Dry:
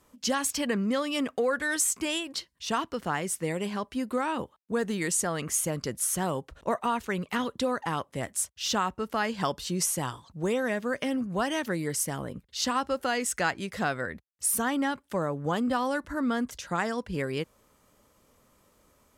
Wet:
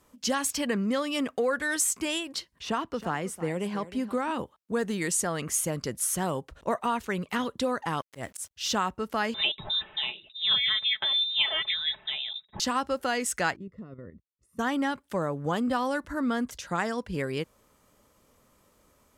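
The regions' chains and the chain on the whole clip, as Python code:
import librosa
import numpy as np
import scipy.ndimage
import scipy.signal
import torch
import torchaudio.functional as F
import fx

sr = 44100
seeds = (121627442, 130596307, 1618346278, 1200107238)

y = fx.chain(x, sr, fx.high_shelf(hz=2600.0, db=-7.0),
    fx.echo_single(ms=319, db=-16.0),
    fx.band_squash(depth_pct=40), at=(2.52, 4.31))
y = fx.chain(y, sr, fx.auto_swell(attack_ms=109.0),
    fx.sample_gate(floor_db=-56.0), at=(8.01, 8.51))
y = fx.chain(y, sr, fx.comb(ms=4.4, depth=0.65),
    fx.freq_invert(carrier_hz=3800), at=(9.34, 12.6))
y = fx.chain(y, sr, fx.level_steps(step_db=12),
    fx.moving_average(points=56), at=(13.56, 14.59))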